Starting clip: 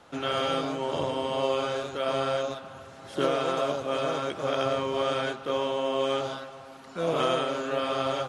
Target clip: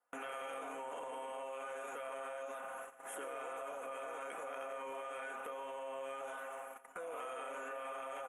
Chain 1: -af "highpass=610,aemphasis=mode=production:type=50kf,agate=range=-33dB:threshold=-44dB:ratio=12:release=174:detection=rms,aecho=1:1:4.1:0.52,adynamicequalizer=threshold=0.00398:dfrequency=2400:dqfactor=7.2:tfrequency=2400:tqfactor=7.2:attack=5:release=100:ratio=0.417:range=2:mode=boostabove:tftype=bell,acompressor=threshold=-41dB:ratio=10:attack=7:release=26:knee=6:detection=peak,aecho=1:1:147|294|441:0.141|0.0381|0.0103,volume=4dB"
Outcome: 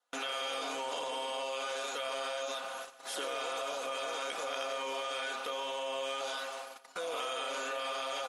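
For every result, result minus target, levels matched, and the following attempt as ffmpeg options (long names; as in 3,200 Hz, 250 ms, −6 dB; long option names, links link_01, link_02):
4,000 Hz band +13.0 dB; downward compressor: peak gain reduction −6.5 dB
-af "highpass=610,aemphasis=mode=production:type=50kf,agate=range=-33dB:threshold=-44dB:ratio=12:release=174:detection=rms,aecho=1:1:4.1:0.52,adynamicequalizer=threshold=0.00398:dfrequency=2400:dqfactor=7.2:tfrequency=2400:tqfactor=7.2:attack=5:release=100:ratio=0.417:range=2:mode=boostabove:tftype=bell,asuperstop=centerf=4500:order=4:qfactor=0.67,acompressor=threshold=-41dB:ratio=10:attack=7:release=26:knee=6:detection=peak,aecho=1:1:147|294|441:0.141|0.0381|0.0103,volume=4dB"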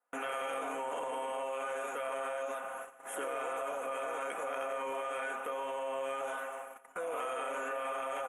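downward compressor: peak gain reduction −7 dB
-af "highpass=610,aemphasis=mode=production:type=50kf,agate=range=-33dB:threshold=-44dB:ratio=12:release=174:detection=rms,aecho=1:1:4.1:0.52,adynamicequalizer=threshold=0.00398:dfrequency=2400:dqfactor=7.2:tfrequency=2400:tqfactor=7.2:attack=5:release=100:ratio=0.417:range=2:mode=boostabove:tftype=bell,asuperstop=centerf=4500:order=4:qfactor=0.67,acompressor=threshold=-49dB:ratio=10:attack=7:release=26:knee=6:detection=peak,aecho=1:1:147|294|441:0.141|0.0381|0.0103,volume=4dB"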